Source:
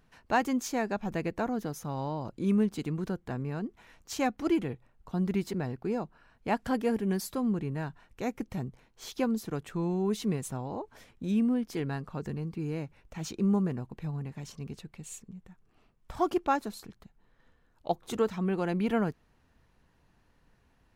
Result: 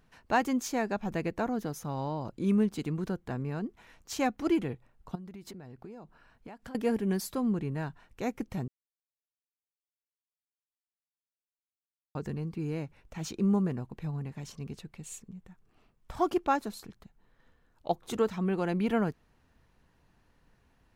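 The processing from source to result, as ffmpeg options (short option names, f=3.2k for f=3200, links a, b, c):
-filter_complex "[0:a]asettb=1/sr,asplit=3[a][b][c];[a]atrim=end=5.154[d];[b]atrim=start=5.15:end=6.75,asetpts=PTS-STARTPTS,afade=t=in:d=0.004:c=qsin,afade=t=out:st=1.596:d=0.004:c=qsin,acompressor=threshold=-41dB:ratio=20:attack=3.2:release=140:knee=1:detection=peak[e];[c]atrim=start=6.746[f];[d][e]acrossfade=d=0.004:c1=hsin:c2=qsin[g];[g][f]acrossfade=d=0.004:c1=qsin:c2=hsin,asplit=3[h][i][j];[h]atrim=end=8.68,asetpts=PTS-STARTPTS,afade=t=out:st=8.676:d=0.004:c=hsin[k];[i]atrim=start=8.68:end=12.15,asetpts=PTS-STARTPTS,volume=0[l];[j]atrim=start=12.15,asetpts=PTS-STARTPTS,afade=t=in:d=0.004:c=hsin[m];[k][l][m]concat=n=3:v=0:a=1"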